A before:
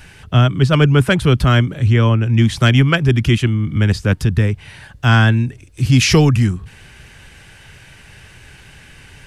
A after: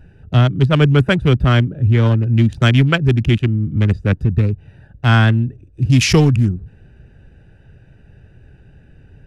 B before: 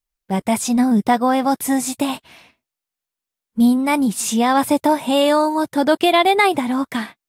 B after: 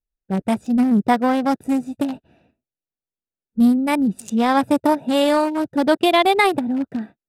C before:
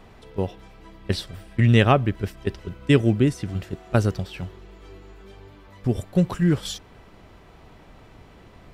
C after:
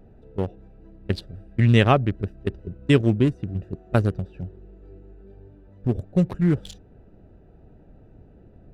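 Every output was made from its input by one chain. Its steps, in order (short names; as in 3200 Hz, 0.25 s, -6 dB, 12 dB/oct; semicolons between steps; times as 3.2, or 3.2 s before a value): Wiener smoothing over 41 samples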